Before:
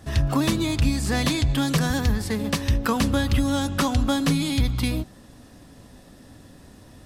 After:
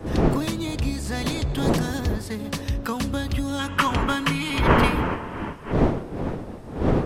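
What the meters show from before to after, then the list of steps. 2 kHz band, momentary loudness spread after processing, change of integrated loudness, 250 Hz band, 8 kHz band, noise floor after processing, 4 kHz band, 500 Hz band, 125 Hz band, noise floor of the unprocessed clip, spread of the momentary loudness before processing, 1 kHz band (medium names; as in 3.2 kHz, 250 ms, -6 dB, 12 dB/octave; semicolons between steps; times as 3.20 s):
+2.5 dB, 10 LU, -1.5 dB, -1.0 dB, -4.5 dB, -36 dBFS, -2.0 dB, +4.5 dB, -1.0 dB, -49 dBFS, 4 LU, +4.5 dB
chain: wind noise 390 Hz -22 dBFS; time-frequency box 3.59–5.72 s, 840–3300 Hz +11 dB; trim -4.5 dB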